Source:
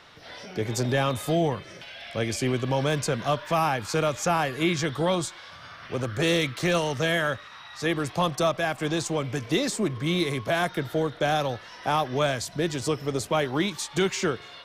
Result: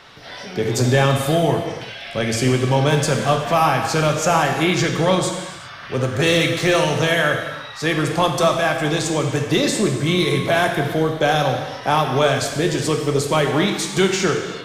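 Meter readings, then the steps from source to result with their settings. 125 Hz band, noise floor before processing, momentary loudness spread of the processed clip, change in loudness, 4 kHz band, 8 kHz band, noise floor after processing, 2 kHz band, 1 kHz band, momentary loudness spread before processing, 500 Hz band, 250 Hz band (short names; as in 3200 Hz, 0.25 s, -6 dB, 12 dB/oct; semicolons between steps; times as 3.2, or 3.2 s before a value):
+9.0 dB, -46 dBFS, 8 LU, +8.0 dB, +8.0 dB, +8.0 dB, -35 dBFS, +8.0 dB, +8.0 dB, 8 LU, +7.5 dB, +7.0 dB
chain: non-linear reverb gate 0.42 s falling, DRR 2.5 dB; gain +6 dB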